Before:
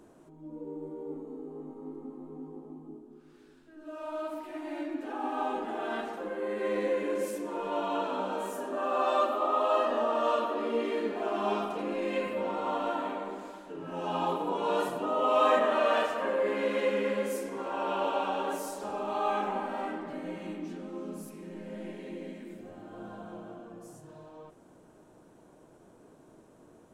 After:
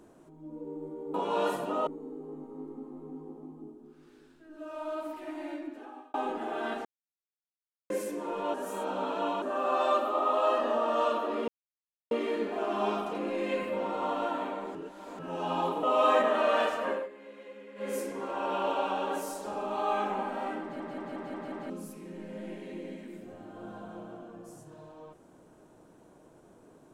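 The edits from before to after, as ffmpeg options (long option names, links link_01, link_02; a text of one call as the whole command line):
ffmpeg -i in.wav -filter_complex "[0:a]asplit=20[link_01][link_02][link_03][link_04][link_05][link_06][link_07][link_08][link_09][link_10][link_11][link_12][link_13][link_14][link_15][link_16][link_17][link_18][link_19][link_20];[link_01]atrim=end=1.142[link_21];[link_02]atrim=start=14.468:end=15.202[link_22];[link_03]atrim=start=1.138:end=5.41,asetpts=PTS-STARTPTS,afade=type=out:start_time=3.482:duration=0.79[link_23];[link_04]atrim=start=5.41:end=6.12,asetpts=PTS-STARTPTS,afade=type=in:duration=0.004:curve=hsin,afade=type=out:start_time=0.706:duration=0.004:curve=hsin[link_24];[link_05]atrim=start=6.12:end=7.17,asetpts=PTS-STARTPTS,volume=0[link_25];[link_06]atrim=start=7.17:end=7.812,asetpts=PTS-STARTPTS,afade=type=in:duration=0.004:curve=hsin[link_26];[link_07]atrim=start=7.808:end=8.692,asetpts=PTS-STARTPTS,areverse[link_27];[link_08]atrim=start=8.688:end=10.75,asetpts=PTS-STARTPTS,afade=type=out:start_time=2.058:duration=0.004:curve=hsin,apad=pad_dur=0.63[link_28];[link_09]atrim=start=10.75:end=13.392,asetpts=PTS-STARTPTS,afade=type=in:duration=0.004:curve=hsin[link_29];[link_10]atrim=start=13.388:end=13.832,asetpts=PTS-STARTPTS,areverse[link_30];[link_11]atrim=start=13.828:end=14.472[link_31];[link_12]atrim=start=15.198:end=16.46,asetpts=PTS-STARTPTS,afade=type=out:start_time=1.072:duration=0.19:silence=0.112202[link_32];[link_13]atrim=start=16.46:end=17.12,asetpts=PTS-STARTPTS,volume=-19dB[link_33];[link_14]atrim=start=17.12:end=20.172,asetpts=PTS-STARTPTS,afade=type=in:duration=0.19:silence=0.112202[link_34];[link_15]atrim=start=19.988:end=20.172[link_35];[link_16]atrim=start=19.988:end=20.172[link_36];[link_17]atrim=start=19.988:end=20.172[link_37];[link_18]atrim=start=19.988:end=20.172[link_38];[link_19]atrim=start=19.988:end=20.172[link_39];[link_20]atrim=start=21.068[link_40];[link_21][link_22]acrossfade=duration=0.004:curve1=hsin:curve2=hsin[link_41];[link_23][link_24][link_25][link_26]concat=n=4:v=0:a=1[link_42];[link_41][link_42]acrossfade=duration=0.004:curve1=hsin:curve2=hsin[link_43];[link_43][link_27]acrossfade=duration=0.004:curve1=hsin:curve2=hsin[link_44];[link_28][link_29]concat=n=2:v=0:a=1[link_45];[link_44][link_45]acrossfade=duration=0.004:curve1=hsin:curve2=hsin[link_46];[link_46][link_30]acrossfade=duration=0.004:curve1=hsin:curve2=hsin[link_47];[link_47][link_31]acrossfade=duration=0.004:curve1=hsin:curve2=hsin[link_48];[link_32][link_33][link_34]concat=n=3:v=0:a=1[link_49];[link_48][link_49]acrossfade=duration=0.004:curve1=hsin:curve2=hsin[link_50];[link_50][link_35]acrossfade=duration=0.004:curve1=hsin:curve2=hsin[link_51];[link_51][link_36]acrossfade=duration=0.004:curve1=hsin:curve2=hsin[link_52];[link_52][link_37]acrossfade=duration=0.004:curve1=hsin:curve2=hsin[link_53];[link_53][link_38]acrossfade=duration=0.004:curve1=hsin:curve2=hsin[link_54];[link_54][link_39]acrossfade=duration=0.004:curve1=hsin:curve2=hsin[link_55];[link_55][link_40]acrossfade=duration=0.004:curve1=hsin:curve2=hsin" out.wav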